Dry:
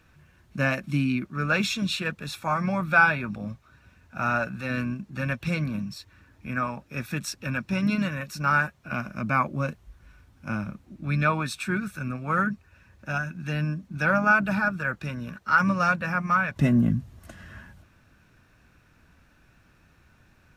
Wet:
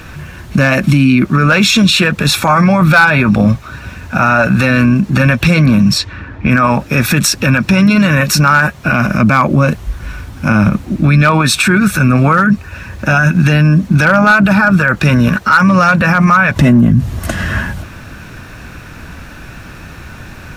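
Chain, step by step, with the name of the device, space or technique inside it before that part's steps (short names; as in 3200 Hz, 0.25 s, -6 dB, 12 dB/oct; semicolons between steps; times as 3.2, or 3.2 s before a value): 5.66–6.61 low-pass opened by the level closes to 1900 Hz, open at -29.5 dBFS; loud club master (compressor 1.5:1, threshold -28 dBFS, peak gain reduction 5.5 dB; hard clip -18.5 dBFS, distortion -23 dB; maximiser +29 dB); gain -1 dB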